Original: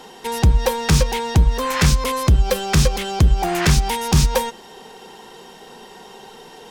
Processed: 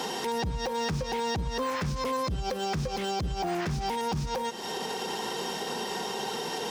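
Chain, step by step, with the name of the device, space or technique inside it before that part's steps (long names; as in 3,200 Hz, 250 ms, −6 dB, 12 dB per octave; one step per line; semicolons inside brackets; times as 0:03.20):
broadcast voice chain (high-pass filter 96 Hz 12 dB per octave; de-essing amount 85%; downward compressor 5 to 1, threshold −34 dBFS, peak gain reduction 19 dB; parametric band 5,400 Hz +4.5 dB 0.59 octaves; brickwall limiter −31 dBFS, peak gain reduction 9.5 dB)
level +8 dB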